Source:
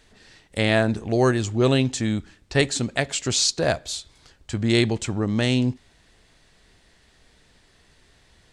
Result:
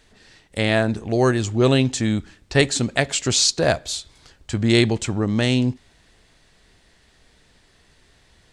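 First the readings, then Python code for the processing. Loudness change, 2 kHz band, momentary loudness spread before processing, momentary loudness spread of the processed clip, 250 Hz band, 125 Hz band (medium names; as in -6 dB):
+2.5 dB, +2.5 dB, 9 LU, 9 LU, +2.5 dB, +2.5 dB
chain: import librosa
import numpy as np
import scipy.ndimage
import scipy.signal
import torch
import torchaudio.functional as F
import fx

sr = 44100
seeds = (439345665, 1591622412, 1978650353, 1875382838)

y = fx.rider(x, sr, range_db=10, speed_s=2.0)
y = y * 10.0 ** (2.5 / 20.0)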